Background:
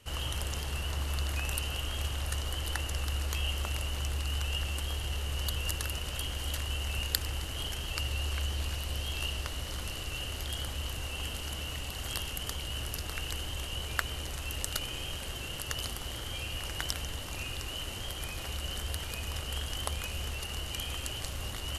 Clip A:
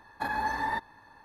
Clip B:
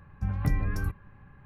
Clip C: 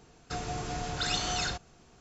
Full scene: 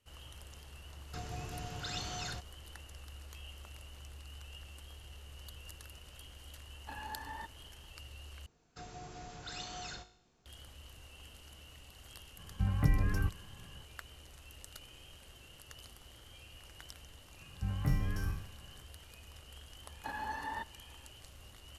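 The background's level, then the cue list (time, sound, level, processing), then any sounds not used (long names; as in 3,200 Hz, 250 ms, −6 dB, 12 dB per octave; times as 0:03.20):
background −17 dB
0:00.83: mix in C −10 dB + parametric band 110 Hz +7 dB
0:06.67: mix in A −15 dB
0:08.46: overwrite with C −8 dB + tuned comb filter 52 Hz, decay 0.63 s
0:12.38: mix in B −2 dB
0:17.40: mix in B −7.5 dB + peak hold with a decay on every bin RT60 0.63 s
0:19.84: mix in A −10 dB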